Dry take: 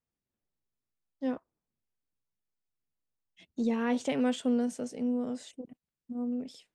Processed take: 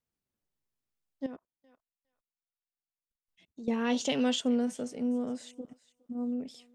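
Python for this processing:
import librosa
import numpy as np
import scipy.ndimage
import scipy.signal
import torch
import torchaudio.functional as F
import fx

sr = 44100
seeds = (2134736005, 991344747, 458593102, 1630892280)

p1 = x + fx.echo_thinned(x, sr, ms=411, feedback_pct=21, hz=1000.0, wet_db=-18, dry=0)
p2 = fx.level_steps(p1, sr, step_db=21, at=(1.26, 3.68))
y = fx.spec_box(p2, sr, start_s=3.85, length_s=0.56, low_hz=2600.0, high_hz=7400.0, gain_db=9)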